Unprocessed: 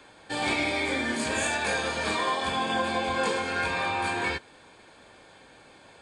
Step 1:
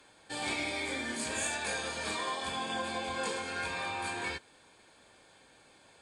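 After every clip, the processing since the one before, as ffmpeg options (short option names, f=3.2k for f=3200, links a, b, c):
-af "aemphasis=mode=production:type=cd,volume=-8.5dB"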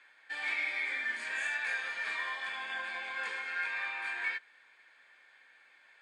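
-af "bandpass=f=1.9k:t=q:w=3.7:csg=0,volume=8dB"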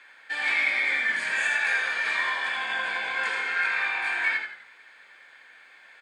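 -filter_complex "[0:a]asplit=6[a][b][c][d][e][f];[b]adelay=83,afreqshift=-52,volume=-6dB[g];[c]adelay=166,afreqshift=-104,volume=-14.4dB[h];[d]adelay=249,afreqshift=-156,volume=-22.8dB[i];[e]adelay=332,afreqshift=-208,volume=-31.2dB[j];[f]adelay=415,afreqshift=-260,volume=-39.6dB[k];[a][g][h][i][j][k]amix=inputs=6:normalize=0,volume=8.5dB"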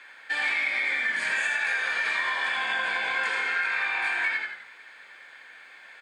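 -af "acompressor=threshold=-27dB:ratio=6,volume=3.5dB"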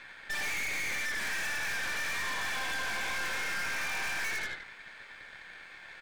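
-af "aeval=exprs='(tanh(70.8*val(0)+0.8)-tanh(0.8))/70.8':c=same,volume=4dB"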